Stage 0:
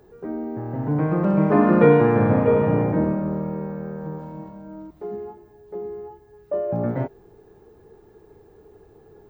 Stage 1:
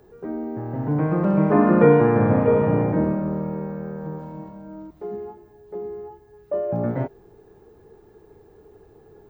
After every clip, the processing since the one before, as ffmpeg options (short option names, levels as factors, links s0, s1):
-filter_complex "[0:a]acrossover=split=2500[s0][s1];[s1]acompressor=threshold=0.00251:ratio=4:attack=1:release=60[s2];[s0][s2]amix=inputs=2:normalize=0"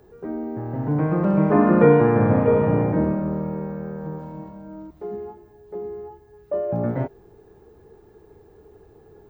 -af "equalizer=f=69:t=o:w=0.77:g=4"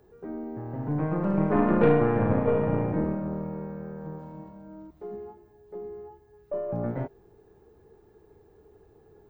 -af "aeval=exprs='0.668*(cos(1*acos(clip(val(0)/0.668,-1,1)))-cos(1*PI/2))+0.0841*(cos(4*acos(clip(val(0)/0.668,-1,1)))-cos(4*PI/2))':c=same,volume=0.473"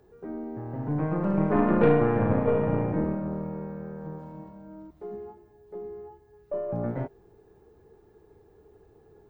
-ar 48000 -c:a libvorbis -b:a 192k